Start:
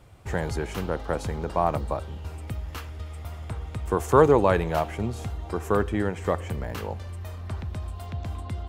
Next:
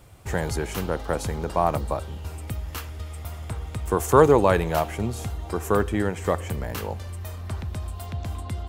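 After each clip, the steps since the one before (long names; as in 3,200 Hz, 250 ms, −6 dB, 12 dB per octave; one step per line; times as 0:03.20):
high-shelf EQ 6,600 Hz +10 dB
level +1.5 dB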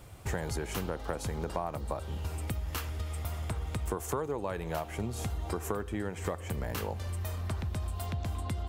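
downward compressor 10 to 1, threshold −30 dBFS, peak gain reduction 21 dB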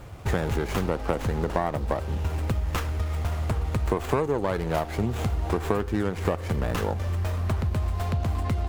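windowed peak hold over 9 samples
level +8.5 dB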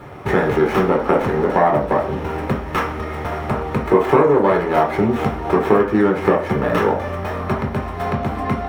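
convolution reverb RT60 0.45 s, pre-delay 3 ms, DRR −1.5 dB
level −1.5 dB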